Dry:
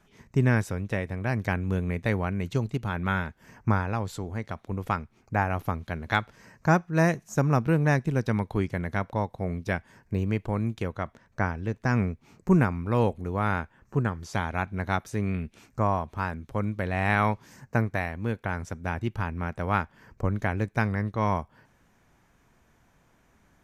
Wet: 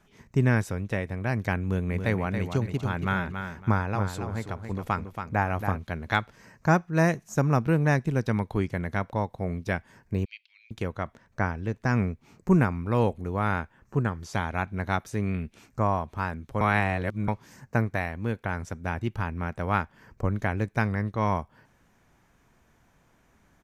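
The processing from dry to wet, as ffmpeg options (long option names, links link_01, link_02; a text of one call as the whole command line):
ffmpeg -i in.wav -filter_complex "[0:a]asplit=3[link_01][link_02][link_03];[link_01]afade=type=out:start_time=1.9:duration=0.02[link_04];[link_02]aecho=1:1:278|556|834:0.422|0.105|0.0264,afade=type=in:start_time=1.9:duration=0.02,afade=type=out:start_time=5.76:duration=0.02[link_05];[link_03]afade=type=in:start_time=5.76:duration=0.02[link_06];[link_04][link_05][link_06]amix=inputs=3:normalize=0,asettb=1/sr,asplit=3[link_07][link_08][link_09];[link_07]atrim=end=10.254[link_10];[link_08]atrim=start=10.25:end=10.71,asetpts=PTS-STARTPTS,afade=type=in:duration=0.004:curve=qsin,afade=type=out:start_time=0.456:duration=0.004:curve=qsin,asuperpass=centerf=3500:order=8:qfactor=1.3[link_11];[link_09]atrim=start=10.706[link_12];[link_10][link_11]acrossfade=duration=0.004:curve1=hsin:curve2=qsin[link_13];[link_13][link_12]acrossfade=duration=0.004:curve1=qsin:curve2=hsin,asplit=3[link_14][link_15][link_16];[link_14]atrim=end=16.612[link_17];[link_15]atrim=start=16.608:end=17.282,asetpts=PTS-STARTPTS,areverse[link_18];[link_16]atrim=start=17.278[link_19];[link_17][link_18]acrossfade=duration=0.004:curve1=hsin:curve2=hsin[link_20];[link_20][link_19]acrossfade=duration=0.004:curve1=hsin:curve2=hsin" out.wav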